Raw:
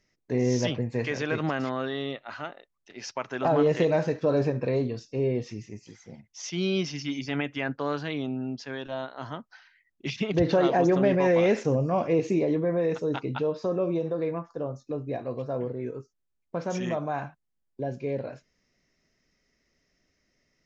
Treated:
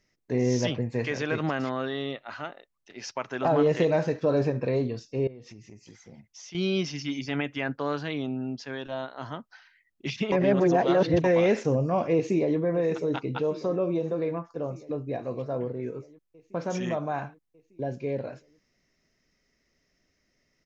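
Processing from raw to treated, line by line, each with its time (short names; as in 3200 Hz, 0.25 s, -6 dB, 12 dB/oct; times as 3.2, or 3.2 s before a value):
5.27–6.55 compressor 5:1, threshold -43 dBFS
10.32–11.24 reverse
12.14–12.58 echo throw 0.6 s, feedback 75%, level -15.5 dB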